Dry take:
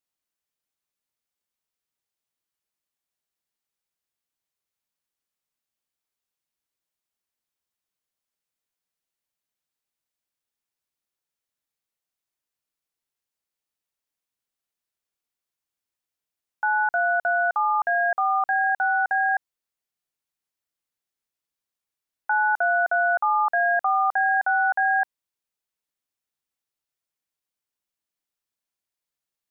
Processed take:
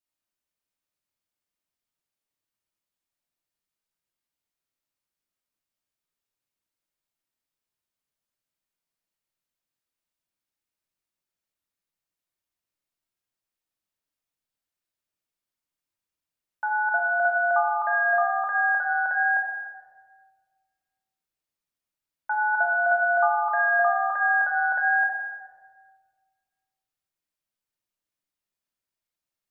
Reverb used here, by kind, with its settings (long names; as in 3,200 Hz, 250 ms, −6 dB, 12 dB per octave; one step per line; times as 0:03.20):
rectangular room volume 1,700 cubic metres, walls mixed, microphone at 2.7 metres
level −5.5 dB